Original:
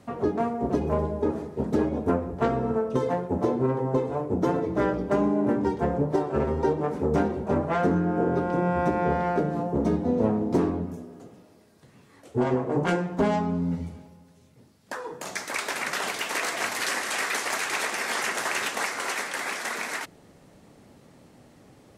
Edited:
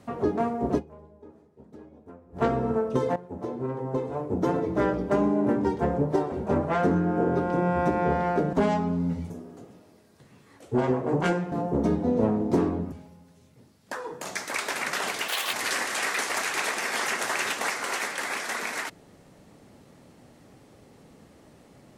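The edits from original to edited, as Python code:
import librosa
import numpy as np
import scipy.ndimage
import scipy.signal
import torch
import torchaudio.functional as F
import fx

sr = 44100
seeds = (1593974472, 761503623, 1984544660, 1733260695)

y = fx.edit(x, sr, fx.fade_down_up(start_s=0.78, length_s=1.59, db=-23.0, fade_s=0.21, curve='exp'),
    fx.fade_in_from(start_s=3.16, length_s=1.49, floor_db=-14.0),
    fx.cut(start_s=6.32, length_s=1.0),
    fx.swap(start_s=9.53, length_s=1.4, other_s=13.15, other_length_s=0.77),
    fx.speed_span(start_s=16.28, length_s=0.41, speed=1.63), tone=tone)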